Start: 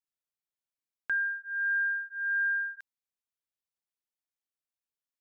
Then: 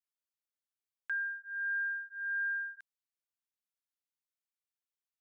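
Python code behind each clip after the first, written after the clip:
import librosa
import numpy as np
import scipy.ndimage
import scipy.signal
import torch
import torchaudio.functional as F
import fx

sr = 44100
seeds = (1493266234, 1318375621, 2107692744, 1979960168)

y = scipy.signal.sosfilt(scipy.signal.butter(2, 1000.0, 'highpass', fs=sr, output='sos'), x)
y = y * librosa.db_to_amplitude(-5.0)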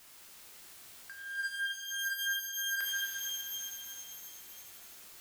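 y = fx.power_curve(x, sr, exponent=0.5)
y = fx.over_compress(y, sr, threshold_db=-40.0, ratio=-0.5)
y = fx.rev_shimmer(y, sr, seeds[0], rt60_s=2.6, semitones=12, shimmer_db=-2, drr_db=-1.0)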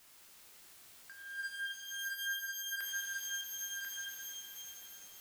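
y = x + 10.0 ** (-4.5 / 20.0) * np.pad(x, (int(1042 * sr / 1000.0), 0))[:len(x)]
y = y * librosa.db_to_amplitude(-5.0)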